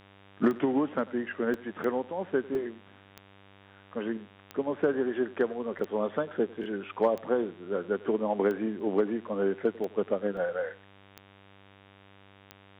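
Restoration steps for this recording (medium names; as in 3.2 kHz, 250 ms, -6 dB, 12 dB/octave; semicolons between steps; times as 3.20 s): de-click; de-hum 98.4 Hz, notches 38; interpolate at 1.54/2.55/5.79/8.80/10.37 s, 1.8 ms; inverse comb 97 ms -21 dB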